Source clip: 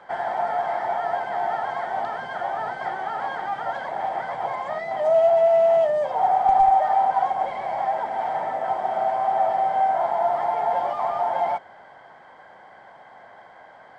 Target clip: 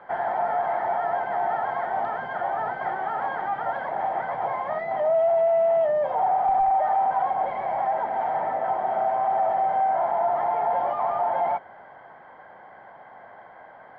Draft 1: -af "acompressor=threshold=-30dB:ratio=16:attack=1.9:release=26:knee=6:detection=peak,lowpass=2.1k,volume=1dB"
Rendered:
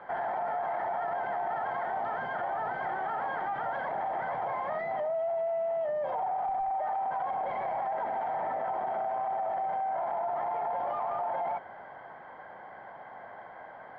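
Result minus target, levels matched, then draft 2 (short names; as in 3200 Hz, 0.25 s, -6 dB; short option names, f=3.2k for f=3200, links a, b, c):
compressor: peak gain reduction +11 dB
-af "acompressor=threshold=-18.5dB:ratio=16:attack=1.9:release=26:knee=6:detection=peak,lowpass=2.1k,volume=1dB"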